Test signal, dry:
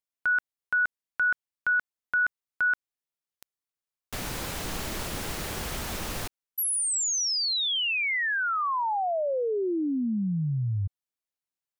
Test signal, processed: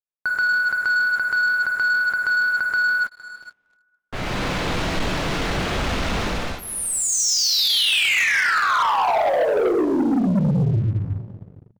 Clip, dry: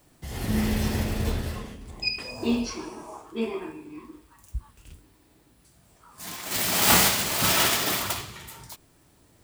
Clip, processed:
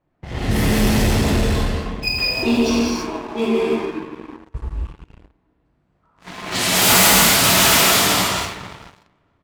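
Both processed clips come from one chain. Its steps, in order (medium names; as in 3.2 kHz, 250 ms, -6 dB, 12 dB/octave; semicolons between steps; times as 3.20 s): on a send: feedback delay 461 ms, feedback 30%, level -18.5 dB; on the sum: level-controlled noise filter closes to 1.7 kHz, open at -20.5 dBFS; gated-style reverb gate 350 ms flat, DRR -5 dB; waveshaping leveller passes 3; trim -5 dB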